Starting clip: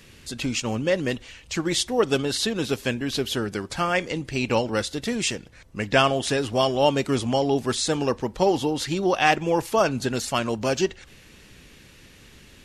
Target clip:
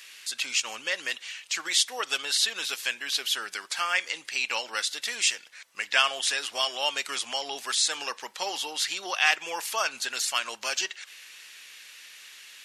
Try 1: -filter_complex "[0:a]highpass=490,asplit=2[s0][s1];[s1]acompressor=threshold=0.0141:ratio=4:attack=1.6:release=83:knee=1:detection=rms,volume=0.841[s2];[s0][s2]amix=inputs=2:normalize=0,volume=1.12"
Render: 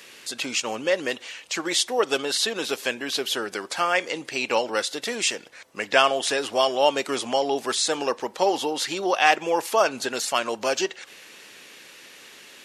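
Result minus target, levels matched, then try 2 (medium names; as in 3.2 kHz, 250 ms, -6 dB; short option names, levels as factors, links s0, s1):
500 Hz band +12.0 dB
-filter_complex "[0:a]highpass=1600,asplit=2[s0][s1];[s1]acompressor=threshold=0.0141:ratio=4:attack=1.6:release=83:knee=1:detection=rms,volume=0.841[s2];[s0][s2]amix=inputs=2:normalize=0,volume=1.12"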